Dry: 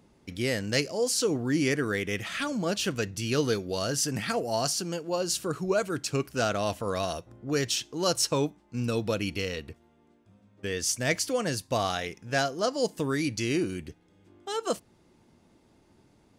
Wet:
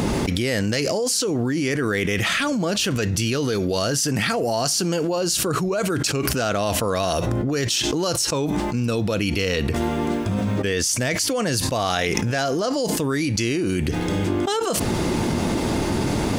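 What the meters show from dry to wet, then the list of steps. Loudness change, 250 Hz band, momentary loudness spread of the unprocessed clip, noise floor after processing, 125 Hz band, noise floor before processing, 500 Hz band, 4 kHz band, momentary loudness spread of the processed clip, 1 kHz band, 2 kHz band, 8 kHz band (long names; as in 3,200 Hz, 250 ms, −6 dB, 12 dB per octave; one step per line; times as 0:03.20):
+7.0 dB, +9.0 dB, 7 LU, −25 dBFS, +10.0 dB, −63 dBFS, +6.0 dB, +7.5 dB, 2 LU, +7.5 dB, +7.0 dB, +7.5 dB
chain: envelope flattener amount 100%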